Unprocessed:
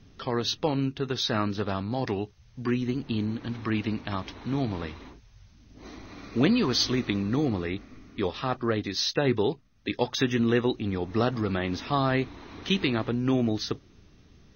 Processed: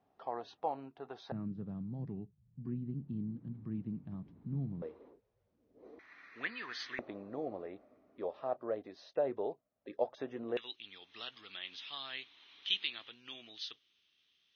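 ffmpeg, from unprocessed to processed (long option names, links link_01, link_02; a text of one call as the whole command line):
ffmpeg -i in.wav -af "asetnsamples=nb_out_samples=441:pad=0,asendcmd='1.32 bandpass f 160;4.82 bandpass f 480;5.99 bandpass f 1800;6.99 bandpass f 610;10.57 bandpass f 3200',bandpass=frequency=750:width_type=q:width=4.7:csg=0" out.wav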